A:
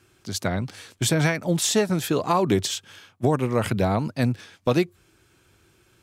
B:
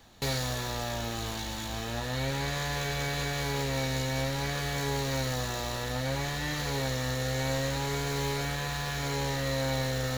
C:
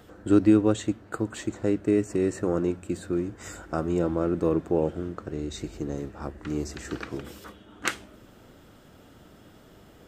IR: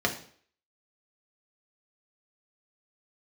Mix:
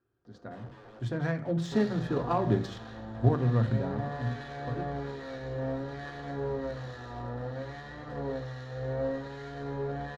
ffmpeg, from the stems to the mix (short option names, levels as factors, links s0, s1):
-filter_complex "[0:a]asubboost=boost=5:cutoff=180,volume=0.282,afade=t=in:st=0.9:d=0.45:silence=0.316228,afade=t=out:st=3.4:d=0.65:silence=0.237137,asplit=2[s0][s1];[s1]volume=0.282[s2];[1:a]flanger=delay=7:depth=2.7:regen=-67:speed=0.88:shape=triangular,acrossover=split=1400[s3][s4];[s3]aeval=exprs='val(0)*(1-0.7/2+0.7/2*cos(2*PI*1.2*n/s))':c=same[s5];[s4]aeval=exprs='val(0)*(1-0.7/2-0.7/2*cos(2*PI*1.2*n/s))':c=same[s6];[s5][s6]amix=inputs=2:normalize=0,adelay=1500,volume=0.708,asplit=2[s7][s8];[s8]volume=0.355[s9];[2:a]bandreject=f=60:t=h:w=6,bandreject=f=120:t=h:w=6,bandreject=f=180:t=h:w=6,bandreject=f=240:t=h:w=6,alimiter=limit=0.1:level=0:latency=1:release=76,aeval=exprs='(mod(39.8*val(0)+1,2)-1)/39.8':c=same,adelay=250,volume=0.178,asplit=2[s10][s11];[s11]volume=0.224[s12];[3:a]atrim=start_sample=2205[s13];[s2][s9][s12]amix=inputs=3:normalize=0[s14];[s14][s13]afir=irnorm=-1:irlink=0[s15];[s0][s7][s10][s15]amix=inputs=4:normalize=0,adynamicsmooth=sensitivity=1.5:basefreq=1900"